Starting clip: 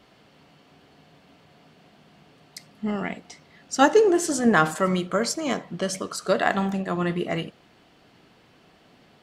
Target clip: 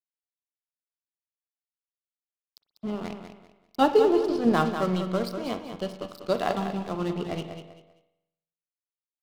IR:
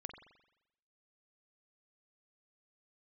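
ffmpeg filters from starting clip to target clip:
-filter_complex "[0:a]aresample=11025,aresample=44100,aeval=exprs='sgn(val(0))*max(abs(val(0))-0.0237,0)':channel_layout=same,equalizer=frequency=1800:width_type=o:width=0.7:gain=-12,aecho=1:1:195|390|585:0.376|0.105|0.0295,asplit=2[link_01][link_02];[1:a]atrim=start_sample=2205[link_03];[link_02][link_03]afir=irnorm=-1:irlink=0,volume=6dB[link_04];[link_01][link_04]amix=inputs=2:normalize=0,volume=-8dB"

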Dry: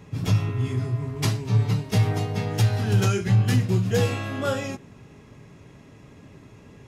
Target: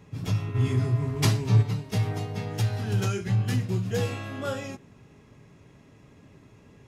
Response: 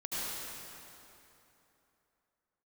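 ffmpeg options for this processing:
-filter_complex "[0:a]asplit=3[link_01][link_02][link_03];[link_01]afade=type=out:start_time=0.54:duration=0.02[link_04];[link_02]acontrast=89,afade=type=in:start_time=0.54:duration=0.02,afade=type=out:start_time=1.61:duration=0.02[link_05];[link_03]afade=type=in:start_time=1.61:duration=0.02[link_06];[link_04][link_05][link_06]amix=inputs=3:normalize=0,volume=-5.5dB"

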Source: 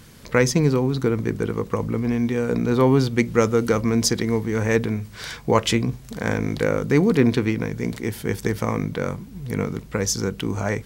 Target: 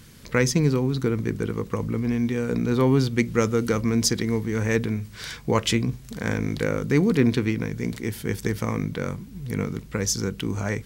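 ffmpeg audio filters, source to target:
ffmpeg -i in.wav -af "equalizer=frequency=730:width=0.87:gain=-5.5,volume=-1dB" out.wav

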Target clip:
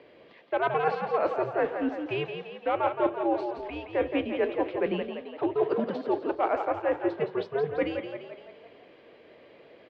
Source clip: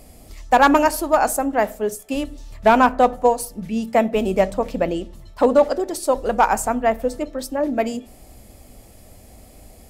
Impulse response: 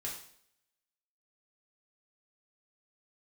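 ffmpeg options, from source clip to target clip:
-filter_complex "[0:a]highpass=frequency=440:width_type=q:width=0.5412,highpass=frequency=440:width_type=q:width=1.307,lowpass=frequency=3500:width_type=q:width=0.5176,lowpass=frequency=3500:width_type=q:width=0.7071,lowpass=frequency=3500:width_type=q:width=1.932,afreqshift=-150,areverse,acompressor=threshold=-24dB:ratio=6,areverse,asplit=7[link_01][link_02][link_03][link_04][link_05][link_06][link_07];[link_02]adelay=170,afreqshift=32,volume=-7dB[link_08];[link_03]adelay=340,afreqshift=64,volume=-12.5dB[link_09];[link_04]adelay=510,afreqshift=96,volume=-18dB[link_10];[link_05]adelay=680,afreqshift=128,volume=-23.5dB[link_11];[link_06]adelay=850,afreqshift=160,volume=-29.1dB[link_12];[link_07]adelay=1020,afreqshift=192,volume=-34.6dB[link_13];[link_01][link_08][link_09][link_10][link_11][link_12][link_13]amix=inputs=7:normalize=0"

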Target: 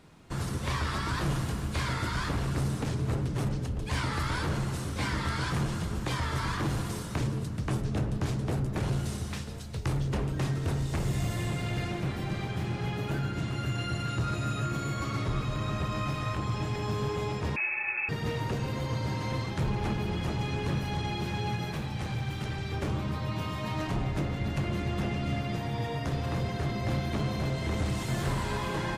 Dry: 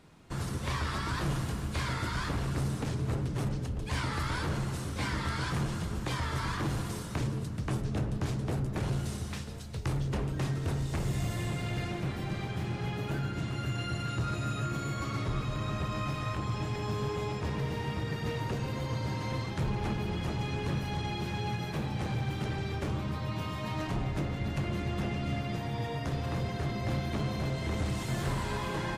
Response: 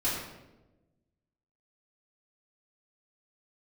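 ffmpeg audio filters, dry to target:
-filter_complex "[0:a]asettb=1/sr,asplit=3[link_01][link_02][link_03];[link_01]atrim=end=17.564[link_04];[link_02]atrim=start=17.56:end=18.09,asetpts=PTS-STARTPTS,afade=type=in:duration=0.004:curve=qsin,afade=type=out:start_time=0.526:duration=0.004:curve=qsin,lowpass=frequency=2300:width_type=q:width=0.5098,lowpass=frequency=2300:width_type=q:width=0.6013,lowpass=frequency=2300:width_type=q:width=0.9,lowpass=frequency=2300:width_type=q:width=2.563,afreqshift=-2700[link_05];[link_03]atrim=start=18.086[link_06];[link_04][link_05]acrossfade=duration=0.004:curve1=hsin:curve2=qsin[link_07];[link_07][link_06]acrossfade=duration=0.004:curve1=qsin:curve2=hsin,asettb=1/sr,asplit=3[link_08][link_09][link_10];[link_08]atrim=end=21.744[link_11];[link_09]atrim=start=21.74:end=22.72,asetpts=PTS-STARTPTS,afade=type=in:duration=0.004:curve=qsin,afade=type=out:start_time=0.976:duration=0.004:curve=qsin,equalizer=frequency=380:width_type=o:width=3:gain=-5[link_12];[link_10]atrim=start=22.716[link_13];[link_11][link_12]acrossfade=duration=0.004:curve1=hsin:curve2=qsin[link_14];[link_14][link_13]acrossfade=duration=0.004:curve1=qsin:curve2=hsin,volume=2dB"

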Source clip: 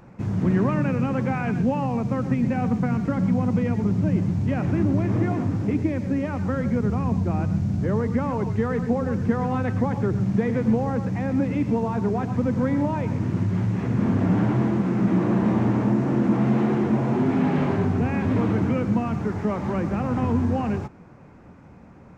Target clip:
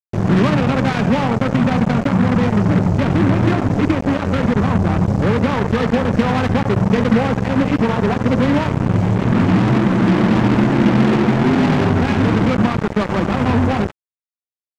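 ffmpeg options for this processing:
ffmpeg -i in.wav -af "atempo=1.5,acrusher=bits=3:mix=0:aa=0.5,volume=7dB" out.wav

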